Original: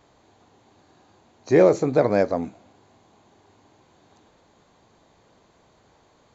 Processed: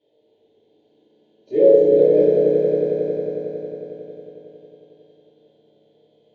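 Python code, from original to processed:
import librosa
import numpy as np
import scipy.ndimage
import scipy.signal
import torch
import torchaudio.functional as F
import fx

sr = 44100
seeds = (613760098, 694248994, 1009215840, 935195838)

y = fx.double_bandpass(x, sr, hz=1200.0, octaves=2.9)
y = fx.high_shelf(y, sr, hz=2200.0, db=-11.5)
y = fx.echo_swell(y, sr, ms=91, loudest=5, wet_db=-8.0)
y = fx.rev_fdn(y, sr, rt60_s=1.5, lf_ratio=1.5, hf_ratio=0.7, size_ms=10.0, drr_db=-9.0)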